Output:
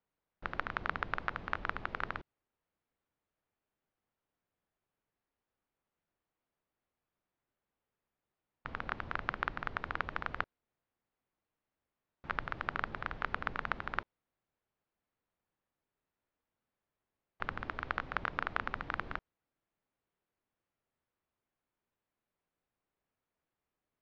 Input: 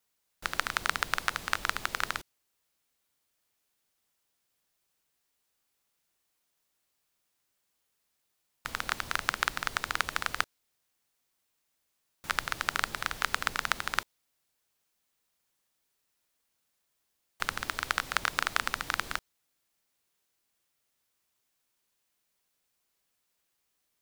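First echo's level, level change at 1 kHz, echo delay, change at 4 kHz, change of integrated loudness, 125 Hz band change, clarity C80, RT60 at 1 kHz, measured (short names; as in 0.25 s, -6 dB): none, -4.5 dB, none, -16.0 dB, -7.0 dB, +0.5 dB, none, none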